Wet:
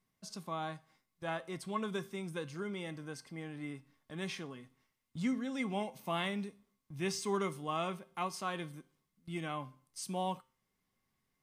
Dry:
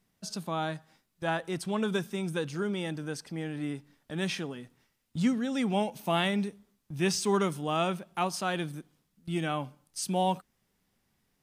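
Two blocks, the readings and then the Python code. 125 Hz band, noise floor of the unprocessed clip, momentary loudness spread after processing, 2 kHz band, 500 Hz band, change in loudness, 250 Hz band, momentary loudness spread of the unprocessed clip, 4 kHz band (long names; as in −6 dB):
−9.0 dB, −76 dBFS, 13 LU, −7.0 dB, −8.0 dB, −7.5 dB, −8.5 dB, 12 LU, −8.5 dB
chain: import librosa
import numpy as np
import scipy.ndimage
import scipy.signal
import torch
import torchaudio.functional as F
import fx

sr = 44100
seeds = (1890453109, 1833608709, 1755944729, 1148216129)

y = fx.comb_fb(x, sr, f0_hz=130.0, decay_s=0.38, harmonics='all', damping=0.0, mix_pct=50)
y = fx.small_body(y, sr, hz=(1100.0, 2100.0), ring_ms=90, db=15)
y = y * 10.0 ** (-3.5 / 20.0)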